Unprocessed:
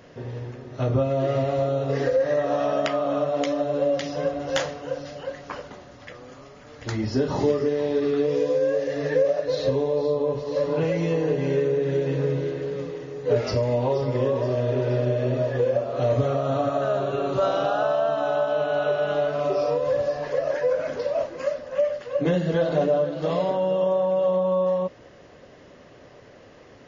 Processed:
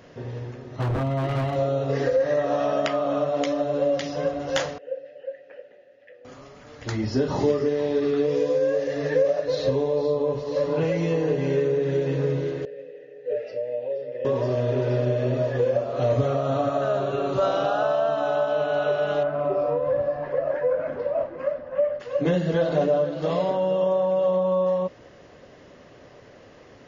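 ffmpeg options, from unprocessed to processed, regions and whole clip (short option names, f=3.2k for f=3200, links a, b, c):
-filter_complex "[0:a]asettb=1/sr,asplit=3[a][b][c];[a]atrim=end=0.764[d];[b]atrim=start=0.76:end=1.56,asetpts=PTS-STARTPTS,afade=t=in:d=0.004:c=qsin,afade=t=out:st=0.796:d=0.004:c=qsin,lowpass=4.1k,aecho=1:1:1:0.69,atrim=end_sample=35280,aeval=exprs='0.106*(abs(mod(val(0)/0.106+3,4)-2)-1)':c=same[e];[c]atrim=start=1.556[f];[d][e]acrossfade=d=0.004:c1=hsin:c2=qsin[g];[g][f]acrossfade=d=0.004:c1=qsin:c2=hsin,asettb=1/sr,asplit=3[h][i][j];[h]atrim=end=4.784[k];[i]atrim=start=4.78:end=6.25,asetpts=PTS-STARTPTS,afade=t=in:d=0.004:c=qsin,afade=t=out:st=1.466:d=0.004:c=qsin,acrossover=split=3400[l][m];[m]acompressor=threshold=-57dB:ratio=4:attack=1:release=60[n];[l][n]amix=inputs=2:normalize=0,asplit=3[o][p][q];[o]bandpass=f=530:t=q:w=8,volume=0dB[r];[p]bandpass=f=1.84k:t=q:w=8,volume=-6dB[s];[q]bandpass=f=2.48k:t=q:w=8,volume=-9dB[t];[r][s][t]amix=inputs=3:normalize=0[u];[j]atrim=start=6.246[v];[k][u]acrossfade=d=0.004:c1=hsin:c2=qsin[w];[w][v]acrossfade=d=0.004:c1=qsin:c2=hsin,asettb=1/sr,asplit=3[x][y][z];[x]atrim=end=12.654[aa];[y]atrim=start=12.65:end=14.25,asetpts=PTS-STARTPTS,afade=t=in:d=0.004:c=qsin,afade=t=out:st=1.596:d=0.004:c=qsin,asplit=3[ab][ac][ad];[ab]bandpass=f=530:t=q:w=8,volume=0dB[ae];[ac]bandpass=f=1.84k:t=q:w=8,volume=-6dB[af];[ad]bandpass=f=2.48k:t=q:w=8,volume=-9dB[ag];[ae][af][ag]amix=inputs=3:normalize=0,aecho=1:1:6.7:0.44,atrim=end_sample=70560[ah];[z]atrim=start=14.246[ai];[aa][ah]acrossfade=d=0.004:c1=hsin:c2=qsin[aj];[aj][ai]acrossfade=d=0.004:c1=qsin:c2=hsin,asettb=1/sr,asplit=3[ak][al][am];[ak]atrim=end=19.234[an];[al]atrim=start=19.23:end=22,asetpts=PTS-STARTPTS,afade=t=in:d=0.004:c=qsin,afade=t=out:st=2.766:d=0.004:c=qsin,lowpass=1.7k,bandreject=f=440:w=12[ao];[am]atrim=start=21.996[ap];[an][ao]acrossfade=d=0.004:c1=hsin:c2=qsin[aq];[aq][ap]acrossfade=d=0.004:c1=qsin:c2=hsin"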